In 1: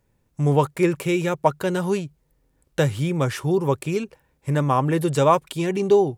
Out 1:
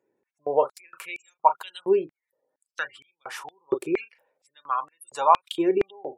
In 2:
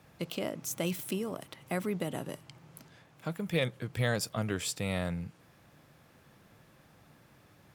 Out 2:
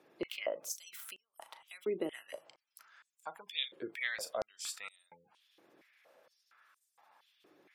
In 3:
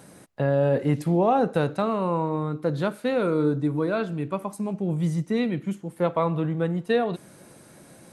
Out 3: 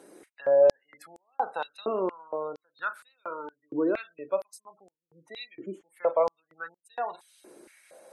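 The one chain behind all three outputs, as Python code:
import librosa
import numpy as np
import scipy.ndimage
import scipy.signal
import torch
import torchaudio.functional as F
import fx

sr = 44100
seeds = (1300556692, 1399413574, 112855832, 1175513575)

y = fx.doubler(x, sr, ms=37.0, db=-11.5)
y = fx.spec_gate(y, sr, threshold_db=-30, keep='strong')
y = fx.filter_held_highpass(y, sr, hz=4.3, low_hz=360.0, high_hz=7900.0)
y = y * librosa.db_to_amplitude(-7.0)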